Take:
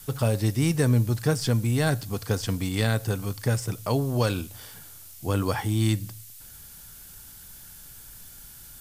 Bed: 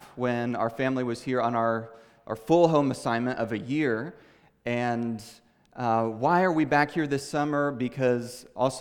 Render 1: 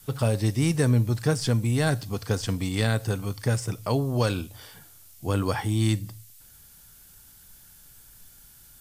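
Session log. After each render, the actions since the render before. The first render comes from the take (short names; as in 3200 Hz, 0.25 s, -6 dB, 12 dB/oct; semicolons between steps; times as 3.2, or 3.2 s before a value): noise print and reduce 6 dB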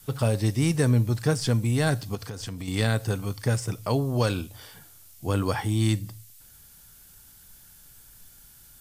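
2.15–2.68 compressor 8:1, threshold -31 dBFS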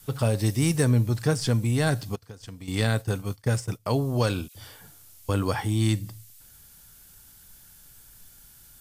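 0.39–0.84 high shelf 7700 Hz +7 dB; 2.16–3.86 expander -30 dBFS; 4.48–5.29 dispersion lows, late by 72 ms, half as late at 1600 Hz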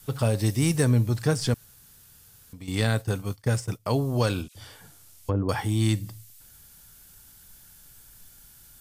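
1.54–2.53 room tone; 4.42–5.49 treble ducked by the level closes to 640 Hz, closed at -22 dBFS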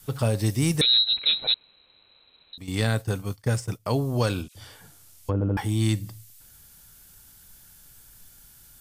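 0.81–2.58 inverted band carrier 4000 Hz; 5.33 stutter in place 0.08 s, 3 plays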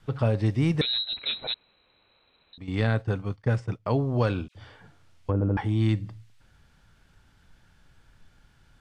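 LPF 2500 Hz 12 dB/oct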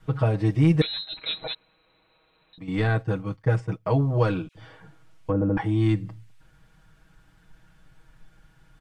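bell 4500 Hz -5 dB 1.5 oct; comb 6.3 ms, depth 97%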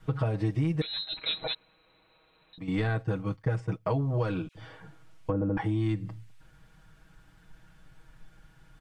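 compressor 5:1, threshold -25 dBFS, peak gain reduction 10.5 dB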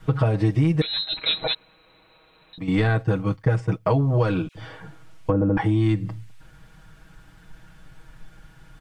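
gain +8 dB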